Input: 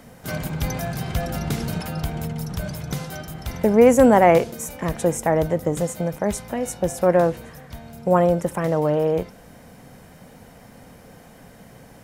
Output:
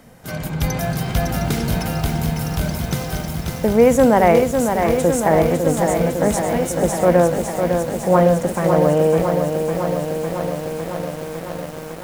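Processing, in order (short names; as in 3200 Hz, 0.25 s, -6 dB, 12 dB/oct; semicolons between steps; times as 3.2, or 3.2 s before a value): on a send at -19 dB: reverb RT60 0.80 s, pre-delay 6 ms; on the sum: AGC gain up to 5.5 dB; lo-fi delay 0.554 s, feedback 80%, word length 6-bit, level -5.5 dB; gain -1 dB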